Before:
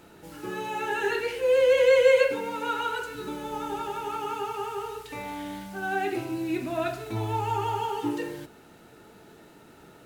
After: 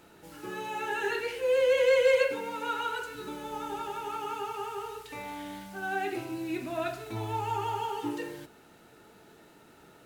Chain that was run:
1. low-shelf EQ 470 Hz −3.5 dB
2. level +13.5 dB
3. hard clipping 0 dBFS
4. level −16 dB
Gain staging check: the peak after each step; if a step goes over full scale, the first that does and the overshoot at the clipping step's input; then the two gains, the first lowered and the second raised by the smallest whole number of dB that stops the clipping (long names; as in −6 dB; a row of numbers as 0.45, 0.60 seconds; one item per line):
−10.5, +3.0, 0.0, −16.0 dBFS
step 2, 3.0 dB
step 2 +10.5 dB, step 4 −13 dB